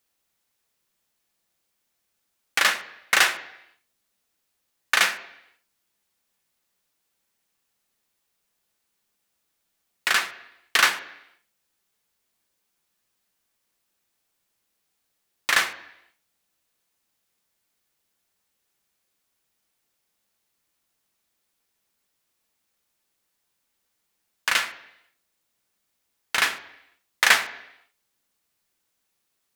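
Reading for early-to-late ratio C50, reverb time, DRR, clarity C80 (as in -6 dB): 14.0 dB, 0.80 s, 8.0 dB, 16.0 dB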